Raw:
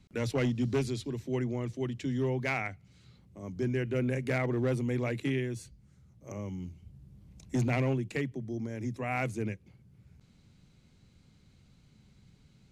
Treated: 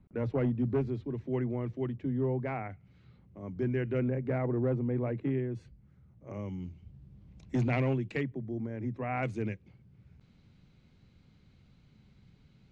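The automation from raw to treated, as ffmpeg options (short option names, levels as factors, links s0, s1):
-af "asetnsamples=n=441:p=0,asendcmd='1.14 lowpass f 1800;1.92 lowpass f 1100;2.7 lowpass f 2200;4.08 lowpass f 1100;5.55 lowpass f 2100;6.34 lowpass f 3600;8.23 lowpass f 1800;9.23 lowpass f 3900',lowpass=1200"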